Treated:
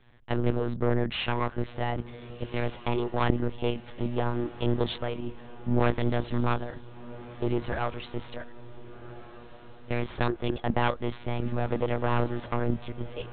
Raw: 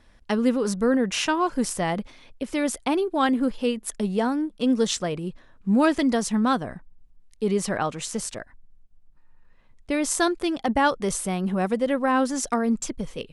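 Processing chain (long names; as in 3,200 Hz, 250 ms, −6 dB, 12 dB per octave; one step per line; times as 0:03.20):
one-sided soft clipper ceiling −24.5 dBFS
one-pitch LPC vocoder at 8 kHz 120 Hz
feedback delay with all-pass diffusion 1,484 ms, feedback 50%, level −16 dB
level −2 dB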